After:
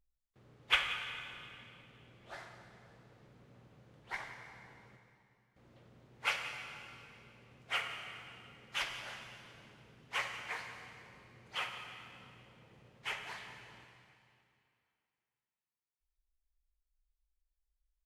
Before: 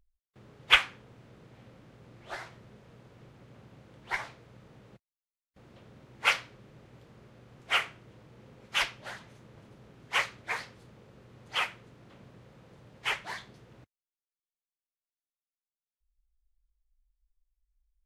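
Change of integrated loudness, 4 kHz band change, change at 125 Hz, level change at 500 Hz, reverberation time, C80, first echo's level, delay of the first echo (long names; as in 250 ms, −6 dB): −9.0 dB, −7.5 dB, −7.0 dB, −7.0 dB, 2.6 s, 6.0 dB, −16.5 dB, 180 ms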